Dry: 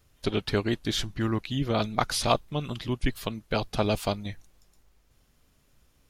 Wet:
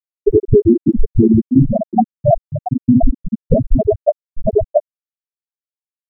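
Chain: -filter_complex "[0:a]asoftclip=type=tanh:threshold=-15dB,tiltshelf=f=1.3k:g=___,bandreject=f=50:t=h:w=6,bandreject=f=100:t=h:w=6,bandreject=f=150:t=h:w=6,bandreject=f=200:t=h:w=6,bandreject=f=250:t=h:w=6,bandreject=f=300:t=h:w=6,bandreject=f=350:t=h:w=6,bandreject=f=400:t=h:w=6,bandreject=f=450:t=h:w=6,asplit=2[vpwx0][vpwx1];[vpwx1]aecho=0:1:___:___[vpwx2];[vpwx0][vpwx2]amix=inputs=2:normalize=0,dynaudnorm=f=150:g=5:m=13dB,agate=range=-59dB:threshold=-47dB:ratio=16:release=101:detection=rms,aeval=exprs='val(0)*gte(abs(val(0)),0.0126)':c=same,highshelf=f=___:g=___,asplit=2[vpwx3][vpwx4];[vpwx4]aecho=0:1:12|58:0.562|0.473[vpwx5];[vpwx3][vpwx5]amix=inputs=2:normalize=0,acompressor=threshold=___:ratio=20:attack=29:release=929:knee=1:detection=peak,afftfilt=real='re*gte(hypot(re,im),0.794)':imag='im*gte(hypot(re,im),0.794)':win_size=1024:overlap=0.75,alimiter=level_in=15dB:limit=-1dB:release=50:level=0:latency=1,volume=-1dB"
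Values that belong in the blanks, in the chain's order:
4.5, 680, 0.501, 4.3k, 10.5, -15dB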